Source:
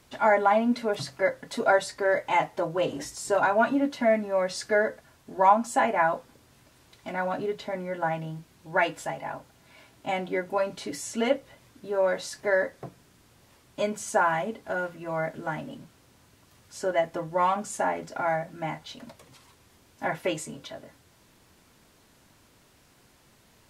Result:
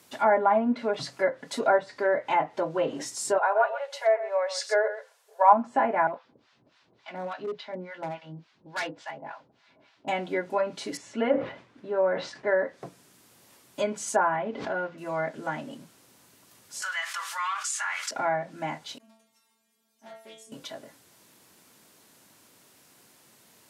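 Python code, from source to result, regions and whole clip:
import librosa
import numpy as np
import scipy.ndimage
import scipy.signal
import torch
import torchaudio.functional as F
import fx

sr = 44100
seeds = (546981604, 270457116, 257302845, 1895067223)

y = fx.chain(x, sr, fx.brickwall_highpass(low_hz=400.0),
    fx.echo_single(ms=132, db=-11.5),
    fx.band_widen(depth_pct=40), at=(3.38, 5.53))
y = fx.chain(y, sr, fx.lowpass(hz=4600.0, slope=24),
    fx.harmonic_tremolo(hz=3.5, depth_pct=100, crossover_hz=790.0),
    fx.overload_stage(gain_db=28.0), at=(6.07, 10.08))
y = fx.chain(y, sr, fx.lowpass(hz=2600.0, slope=12),
    fx.sustainer(db_per_s=110.0), at=(10.97, 12.59))
y = fx.chain(y, sr, fx.air_absorb(metres=190.0),
    fx.pre_swell(db_per_s=58.0), at=(14.36, 14.98))
y = fx.chain(y, sr, fx.cheby1_highpass(hz=1200.0, order=4),
    fx.env_flatten(amount_pct=70), at=(16.82, 18.11))
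y = fx.chain(y, sr, fx.clip_hard(threshold_db=-22.5),
    fx.stiff_resonator(f0_hz=220.0, decay_s=0.51, stiffness=0.002),
    fx.doppler_dist(depth_ms=0.19), at=(18.98, 20.52))
y = scipy.signal.sosfilt(scipy.signal.butter(2, 170.0, 'highpass', fs=sr, output='sos'), y)
y = fx.env_lowpass_down(y, sr, base_hz=1500.0, full_db=-20.0)
y = fx.high_shelf(y, sr, hz=7500.0, db=10.5)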